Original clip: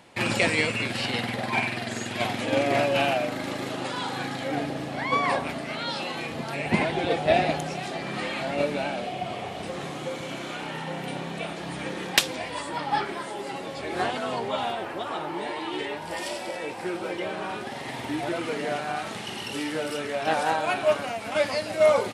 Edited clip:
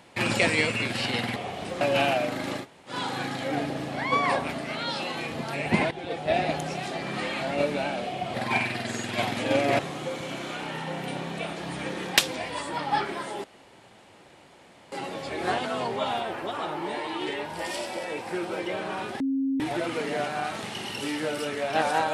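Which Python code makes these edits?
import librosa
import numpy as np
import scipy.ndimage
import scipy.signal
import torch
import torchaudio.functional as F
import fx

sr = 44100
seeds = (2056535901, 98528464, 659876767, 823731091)

y = fx.edit(x, sr, fx.swap(start_s=1.36, length_s=1.45, other_s=9.34, other_length_s=0.45),
    fx.room_tone_fill(start_s=3.62, length_s=0.29, crossfade_s=0.1),
    fx.fade_in_from(start_s=6.91, length_s=0.8, floor_db=-13.0),
    fx.insert_room_tone(at_s=13.44, length_s=1.48),
    fx.bleep(start_s=17.72, length_s=0.4, hz=270.0, db=-23.0), tone=tone)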